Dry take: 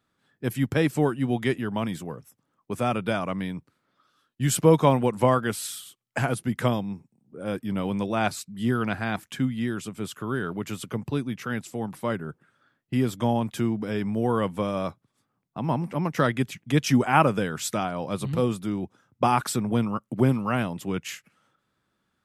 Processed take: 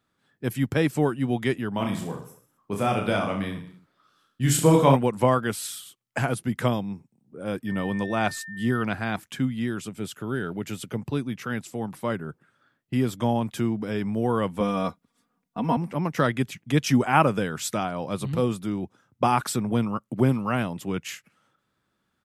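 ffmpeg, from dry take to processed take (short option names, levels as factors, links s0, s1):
-filter_complex "[0:a]asplit=3[s0][s1][s2];[s0]afade=t=out:st=1.78:d=0.02[s3];[s1]aecho=1:1:30|64.5|104.2|149.8|202.3|262.6:0.631|0.398|0.251|0.158|0.1|0.0631,afade=t=in:st=1.78:d=0.02,afade=t=out:st=4.95:d=0.02[s4];[s2]afade=t=in:st=4.95:d=0.02[s5];[s3][s4][s5]amix=inputs=3:normalize=0,asettb=1/sr,asplit=3[s6][s7][s8];[s6]atrim=end=7.674[s9];[s7]atrim=start=7.67:end=8.83,asetpts=PTS-STARTPTS,afade=t=in:d=0.004:c=qsin,afade=t=out:st=1.156:d=0.004:c=qsin,aeval=exprs='val(0)+0.0141*sin(2*PI*1800*n/s)':c=same[s10];[s8]atrim=start=8.826[s11];[s9][s10]acrossfade=d=0.004:c1=hsin:c2=qsin[s12];[s12][s11]acrossfade=d=0.004:c1=qsin:c2=hsin,asettb=1/sr,asplit=3[s13][s14][s15];[s13]atrim=end=9.894[s16];[s14]atrim=start=9.89:end=10.96,asetpts=PTS-STARTPTS,afade=t=in:d=0.004:c=qsin,afade=t=out:st=1.066:d=0.004:c=qsin,equalizer=f=1100:w=5.8:g=-11.5[s17];[s15]atrim=start=10.956[s18];[s16][s17]acrossfade=d=0.004:c1=hsin:c2=qsin[s19];[s19][s18]acrossfade=d=0.004:c1=qsin:c2=hsin,asettb=1/sr,asplit=3[s20][s21][s22];[s20]atrim=end=14.604[s23];[s21]atrim=start=14.6:end=15.77,asetpts=PTS-STARTPTS,afade=t=in:d=0.004:c=qsin,afade=t=out:st=1.166:d=0.004:c=qsin,aecho=1:1:4.2:0.88,atrim=end_sample=51597[s24];[s22]atrim=start=15.766[s25];[s23][s24]acrossfade=d=0.004:c1=hsin:c2=qsin[s26];[s26][s25]acrossfade=d=0.004:c1=qsin:c2=hsin"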